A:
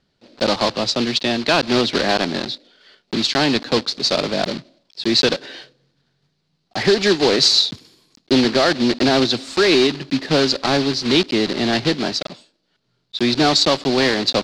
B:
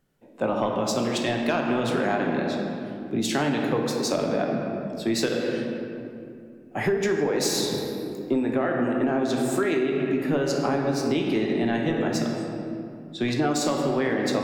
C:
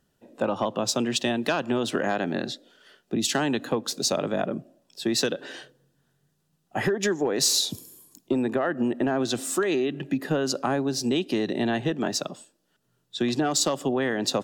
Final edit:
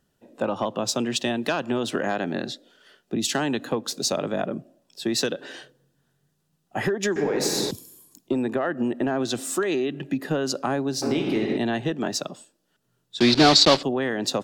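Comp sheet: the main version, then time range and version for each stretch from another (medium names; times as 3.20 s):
C
7.16–7.71 s: from B
11.02–11.57 s: from B
13.20–13.83 s: from A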